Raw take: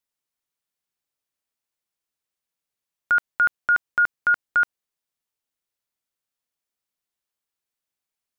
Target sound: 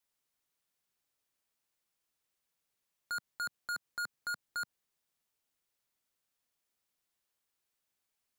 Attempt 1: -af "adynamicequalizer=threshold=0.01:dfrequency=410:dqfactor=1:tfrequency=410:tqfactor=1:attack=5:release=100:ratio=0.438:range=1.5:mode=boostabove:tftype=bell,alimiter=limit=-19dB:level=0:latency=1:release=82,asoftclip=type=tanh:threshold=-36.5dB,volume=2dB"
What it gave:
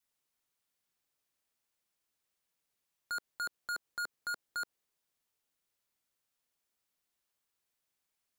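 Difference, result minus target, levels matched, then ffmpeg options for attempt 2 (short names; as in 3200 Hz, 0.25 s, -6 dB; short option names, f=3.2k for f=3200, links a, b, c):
125 Hz band -5.5 dB
-af "adynamicequalizer=threshold=0.01:dfrequency=160:dqfactor=1:tfrequency=160:tqfactor=1:attack=5:release=100:ratio=0.438:range=1.5:mode=boostabove:tftype=bell,alimiter=limit=-19dB:level=0:latency=1:release=82,asoftclip=type=tanh:threshold=-36.5dB,volume=2dB"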